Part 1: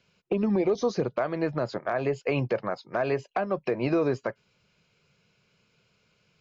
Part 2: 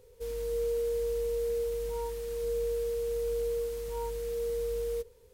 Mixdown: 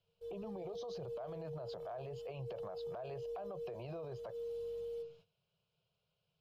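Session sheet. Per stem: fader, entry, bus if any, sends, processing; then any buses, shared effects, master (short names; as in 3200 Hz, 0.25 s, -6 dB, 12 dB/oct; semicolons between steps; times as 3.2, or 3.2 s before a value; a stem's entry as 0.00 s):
0.0 dB, 0.00 s, no send, compressor 1.5:1, threshold -37 dBFS, peak gain reduction 6.5 dB
-0.5 dB, 0.00 s, no send, metallic resonator 95 Hz, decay 0.63 s, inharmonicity 0.03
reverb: off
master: gate -59 dBFS, range -14 dB; EQ curve 170 Hz 0 dB, 260 Hz -21 dB, 390 Hz -5 dB, 690 Hz +4 dB, 2100 Hz -15 dB, 3100 Hz +2 dB, 7600 Hz -13 dB; limiter -38 dBFS, peak gain reduction 18.5 dB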